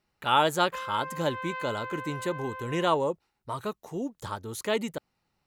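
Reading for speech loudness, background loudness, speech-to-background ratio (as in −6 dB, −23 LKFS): −30.0 LKFS, −38.5 LKFS, 8.5 dB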